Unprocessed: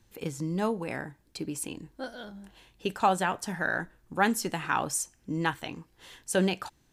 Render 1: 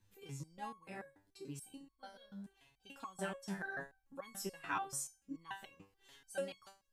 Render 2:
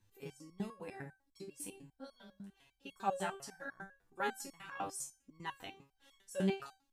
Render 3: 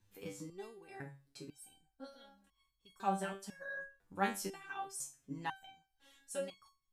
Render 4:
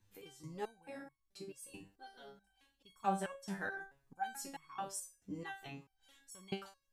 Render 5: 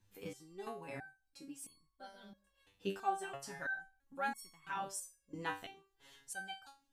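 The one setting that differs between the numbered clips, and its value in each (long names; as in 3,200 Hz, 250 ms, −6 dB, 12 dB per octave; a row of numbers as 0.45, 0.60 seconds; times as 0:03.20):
step-sequenced resonator, speed: 6.9, 10, 2, 4.6, 3 Hertz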